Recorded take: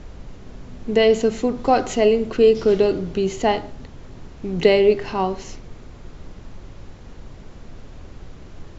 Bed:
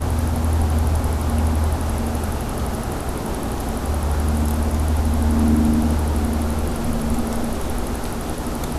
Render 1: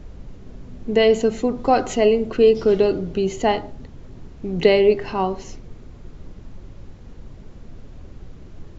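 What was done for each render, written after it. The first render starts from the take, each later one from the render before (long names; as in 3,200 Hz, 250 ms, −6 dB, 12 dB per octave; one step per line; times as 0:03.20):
broadband denoise 6 dB, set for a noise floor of −41 dBFS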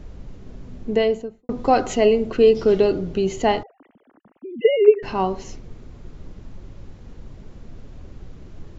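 0:00.76–0:01.49: fade out and dull
0:03.63–0:05.03: three sine waves on the formant tracks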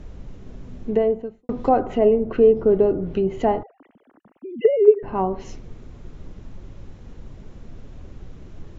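treble cut that deepens with the level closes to 1,000 Hz, closed at −16.5 dBFS
parametric band 4,600 Hz −4 dB 0.21 octaves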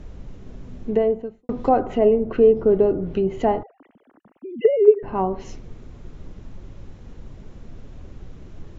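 no processing that can be heard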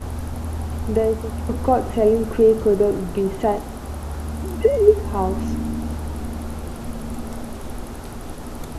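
mix in bed −8.5 dB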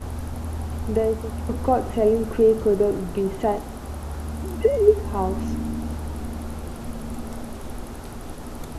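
level −2.5 dB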